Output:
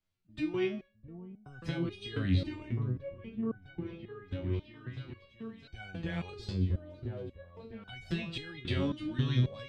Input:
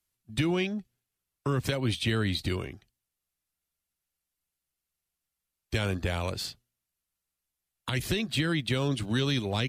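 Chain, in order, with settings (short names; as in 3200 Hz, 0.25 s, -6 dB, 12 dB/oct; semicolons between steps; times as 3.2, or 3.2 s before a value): LPF 3800 Hz 12 dB/oct; low shelf 300 Hz +8 dB; notches 50/100 Hz; repeats that get brighter 0.656 s, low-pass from 400 Hz, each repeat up 1 oct, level -6 dB; on a send at -21 dB: reverb, pre-delay 7 ms; on the sum: compressor, threshold -23 dBFS, peak gain reduction 6.5 dB; stepped resonator 3.7 Hz 92–750 Hz; gain +7 dB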